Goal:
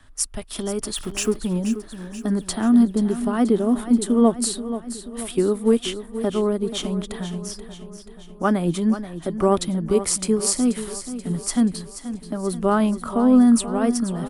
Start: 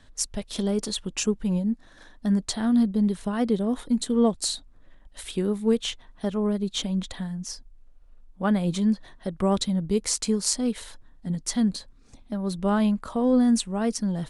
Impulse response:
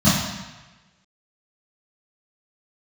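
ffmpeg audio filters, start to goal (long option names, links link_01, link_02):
-filter_complex "[0:a]asettb=1/sr,asplit=3[link_01][link_02][link_03];[link_01]atrim=end=0.964[link_04];[link_02]atrim=start=0.96:end=1.39,asetpts=PTS-STARTPTS,afade=type=in:duration=0.004:curve=qsin,afade=type=out:start_time=0.426:duration=0.004:curve=qsin,aeval=exprs='val(0)+0.5*0.0158*sgn(val(0))':channel_layout=same[link_05];[link_03]atrim=start=1.386[link_06];[link_04][link_05]acrossfade=duration=0.004:curve1=hsin:curve2=qsin[link_07];[link_07][link_06]acrossfade=duration=0.004:curve1=qsin:curve2=hsin,equalizer=frequency=200:width_type=o:width=0.33:gain=-7,equalizer=frequency=500:width_type=o:width=0.33:gain=-9,equalizer=frequency=1250:width_type=o:width=0.33:gain=6,equalizer=frequency=4000:width_type=o:width=0.33:gain=-6,equalizer=frequency=6300:width_type=o:width=0.33:gain=-4,equalizer=frequency=10000:width_type=o:width=0.33:gain=8,acrossover=split=250|530|2300[link_08][link_09][link_10][link_11];[link_09]dynaudnorm=framelen=820:gausssize=3:maxgain=10dB[link_12];[link_08][link_12][link_10][link_11]amix=inputs=4:normalize=0,aecho=1:1:482|964|1446|1928|2410|2892:0.251|0.138|0.076|0.0418|0.023|0.0126,volume=2.5dB"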